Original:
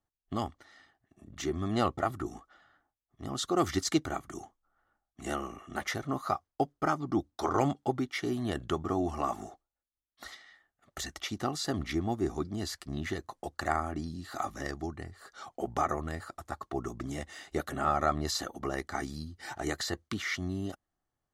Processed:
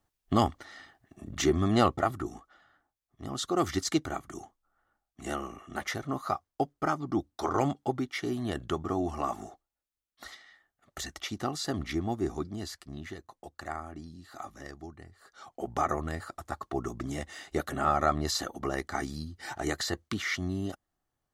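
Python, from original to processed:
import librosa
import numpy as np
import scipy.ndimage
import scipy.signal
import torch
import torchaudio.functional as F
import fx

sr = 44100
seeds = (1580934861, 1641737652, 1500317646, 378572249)

y = fx.gain(x, sr, db=fx.line((1.35, 9.0), (2.35, 0.0), (12.34, 0.0), (13.18, -7.5), (15.09, -7.5), (15.92, 2.0)))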